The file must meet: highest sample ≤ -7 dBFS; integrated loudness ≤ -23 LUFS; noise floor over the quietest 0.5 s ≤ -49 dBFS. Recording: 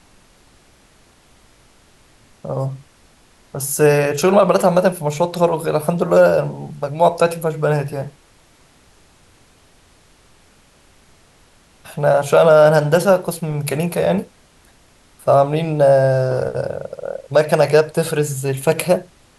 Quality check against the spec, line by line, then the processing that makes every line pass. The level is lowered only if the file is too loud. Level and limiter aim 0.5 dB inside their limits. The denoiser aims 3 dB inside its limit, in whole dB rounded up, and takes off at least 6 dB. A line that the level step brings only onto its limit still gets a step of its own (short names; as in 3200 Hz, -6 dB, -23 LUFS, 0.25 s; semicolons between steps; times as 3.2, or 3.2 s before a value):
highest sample -2.5 dBFS: fail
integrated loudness -16.5 LUFS: fail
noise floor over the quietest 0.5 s -52 dBFS: OK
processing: gain -7 dB